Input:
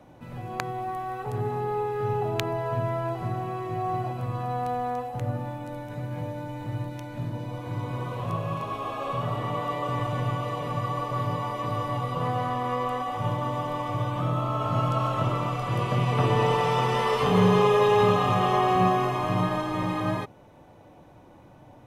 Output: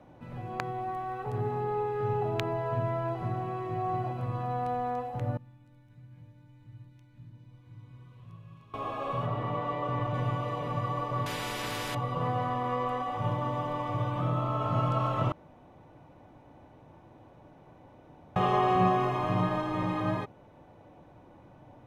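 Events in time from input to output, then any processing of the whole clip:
5.37–8.74 s: amplifier tone stack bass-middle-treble 6-0-2
9.26–10.14 s: treble shelf 6.1 kHz -11.5 dB
11.26–11.95 s: spectrum-flattening compressor 4:1
15.32–18.36 s: room tone
whole clip: treble shelf 5.3 kHz -11.5 dB; trim -2.5 dB

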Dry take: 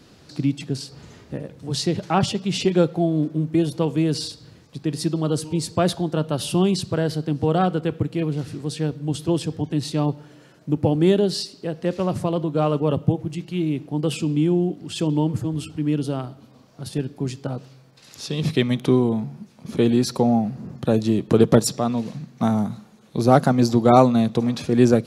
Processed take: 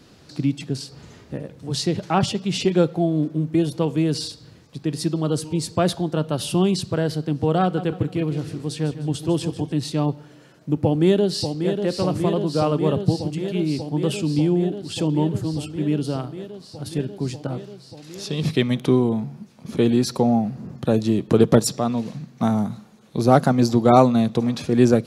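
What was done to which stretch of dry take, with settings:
7.62–9.72 s: feedback delay 152 ms, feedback 40%, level -12.5 dB
10.83–11.83 s: echo throw 590 ms, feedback 85%, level -7 dB

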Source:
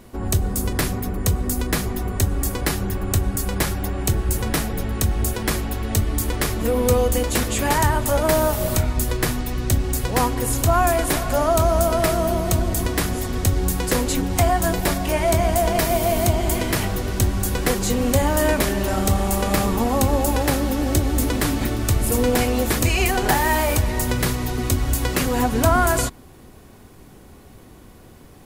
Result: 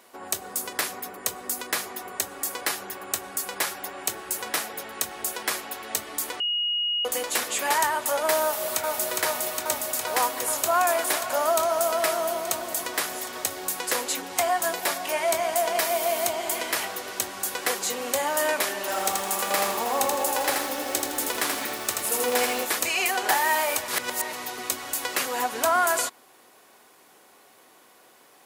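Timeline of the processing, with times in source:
6.40–7.05 s: bleep 2.88 kHz -21.5 dBFS
8.42–9.08 s: echo throw 410 ms, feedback 85%, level -2.5 dB
18.81–22.65 s: bit-crushed delay 81 ms, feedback 35%, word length 6-bit, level -3 dB
23.88–24.33 s: reverse
whole clip: high-pass 650 Hz 12 dB/octave; trim -1.5 dB

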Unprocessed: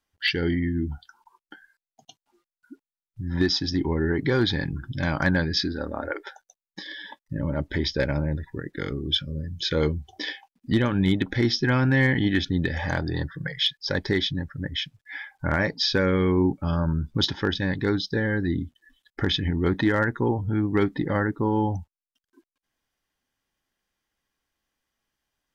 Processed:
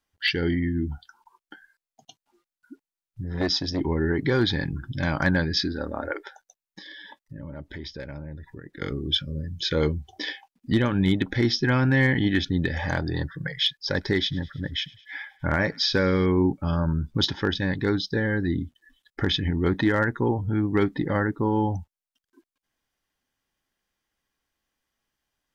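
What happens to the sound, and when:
3.24–3.81 s: transformer saturation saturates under 470 Hz
6.27–8.82 s: compression 2:1, threshold -43 dBFS
13.84–16.26 s: feedback echo behind a high-pass 104 ms, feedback 63%, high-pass 1.7 kHz, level -22 dB

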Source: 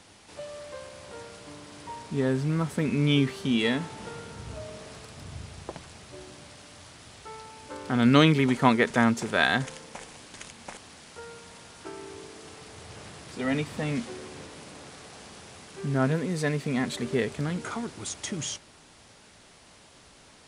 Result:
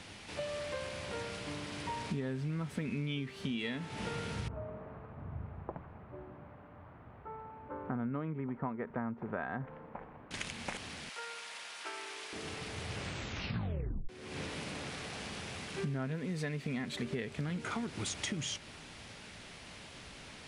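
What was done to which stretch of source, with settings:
4.48–10.31 s: four-pole ladder low-pass 1.4 kHz, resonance 30%
11.09–12.33 s: high-pass 790 Hz
12.95 s: tape stop 1.14 s
whole clip: FFT filter 200 Hz 0 dB, 320 Hz -3 dB, 1.1 kHz -4 dB, 2.4 kHz +2 dB, 7.7 kHz -7 dB; compression 16:1, threshold -39 dBFS; trim +5.5 dB

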